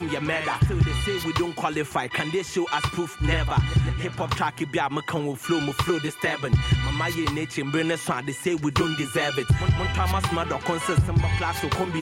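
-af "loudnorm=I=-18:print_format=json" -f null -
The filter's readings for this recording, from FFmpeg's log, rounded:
"input_i" : "-24.8",
"input_tp" : "-10.2",
"input_lra" : "1.3",
"input_thresh" : "-34.8",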